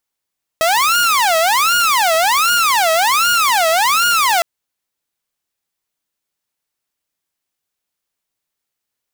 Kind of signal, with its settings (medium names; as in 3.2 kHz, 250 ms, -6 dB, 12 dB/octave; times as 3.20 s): siren wail 642–1430 Hz 1.3 per s saw -9 dBFS 3.81 s